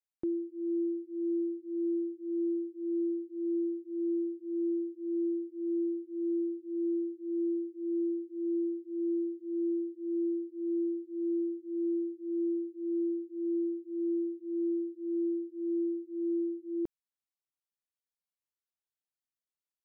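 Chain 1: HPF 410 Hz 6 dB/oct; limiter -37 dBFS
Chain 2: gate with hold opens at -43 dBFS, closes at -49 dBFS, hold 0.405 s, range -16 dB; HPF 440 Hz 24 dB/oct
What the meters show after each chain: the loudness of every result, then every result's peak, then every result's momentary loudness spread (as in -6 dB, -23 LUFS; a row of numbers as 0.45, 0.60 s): -42.0, -43.5 LUFS; -37.0, -33.5 dBFS; 2, 3 LU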